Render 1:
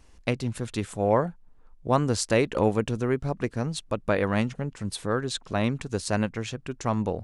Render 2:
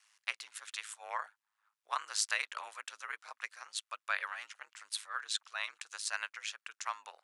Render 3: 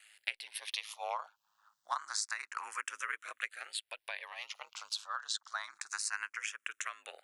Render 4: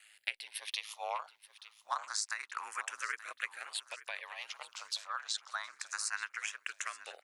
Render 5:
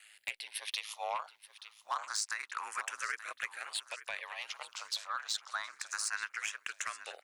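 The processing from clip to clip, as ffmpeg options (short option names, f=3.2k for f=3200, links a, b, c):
-af "aeval=exprs='val(0)*sin(2*PI*53*n/s)':c=same,highpass=f=1.2k:w=0.5412,highpass=f=1.2k:w=1.3066"
-filter_complex "[0:a]acompressor=threshold=-44dB:ratio=6,asplit=2[a][b];[b]afreqshift=0.28[c];[a][c]amix=inputs=2:normalize=1,volume=11.5dB"
-af "aecho=1:1:879|1758|2637|3516:0.158|0.0761|0.0365|0.0175"
-af "asoftclip=type=tanh:threshold=-27dB,volume=2.5dB"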